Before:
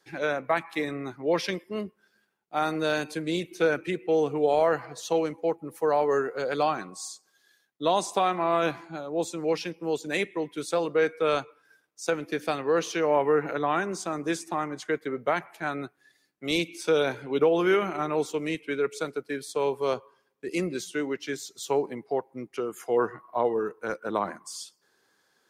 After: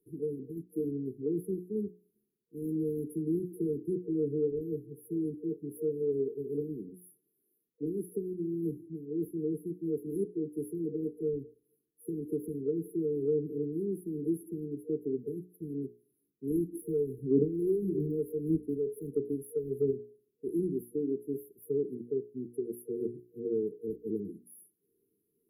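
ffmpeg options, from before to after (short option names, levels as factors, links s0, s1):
-filter_complex "[0:a]asettb=1/sr,asplit=3[s0][s1][s2];[s0]atrim=end=16.724[s3];[s1]atrim=start=16.72:end=19.91,asetpts=PTS-STARTPTS,afade=t=in:d=0.004:c=qsin,afade=t=out:st=3.186:d=0.004:c=qsin,aphaser=in_gain=1:out_gain=1:delay=2:decay=0.6:speed=1.6:type=sinusoidal[s4];[s2]atrim=start=19.906[s5];[s3][s4]acrossfade=d=0.004:c1=hsin:c2=qsin[s6];[s6][s5]acrossfade=d=0.004:c1=qsin:c2=hsin,bandreject=f=60:t=h:w=6,bandreject=f=120:t=h:w=6,bandreject=f=180:t=h:w=6,bandreject=f=240:t=h:w=6,bandreject=f=300:t=h:w=6,bandreject=f=360:t=h:w=6,bandreject=f=420:t=h:w=6,afftfilt=real='re*(1-between(b*sr/4096,470,10000))':imag='im*(1-between(b*sr/4096,470,10000))':win_size=4096:overlap=0.75,acrossover=split=320[s7][s8];[s8]acompressor=threshold=0.0251:ratio=4[s9];[s7][s9]amix=inputs=2:normalize=0"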